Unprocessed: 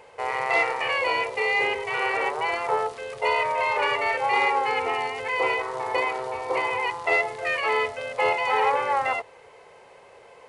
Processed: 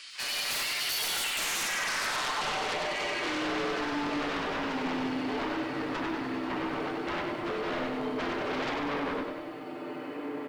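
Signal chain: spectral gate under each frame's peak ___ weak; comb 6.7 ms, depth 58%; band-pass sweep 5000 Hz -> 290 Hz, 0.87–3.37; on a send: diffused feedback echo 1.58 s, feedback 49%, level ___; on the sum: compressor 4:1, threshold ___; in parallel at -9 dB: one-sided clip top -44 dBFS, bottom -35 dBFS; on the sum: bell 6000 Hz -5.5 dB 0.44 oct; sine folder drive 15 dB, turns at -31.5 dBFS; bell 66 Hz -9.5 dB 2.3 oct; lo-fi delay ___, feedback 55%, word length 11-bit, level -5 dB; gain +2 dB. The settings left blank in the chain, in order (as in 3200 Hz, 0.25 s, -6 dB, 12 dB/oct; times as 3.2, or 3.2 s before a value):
-15 dB, -15.5 dB, -44 dBFS, 97 ms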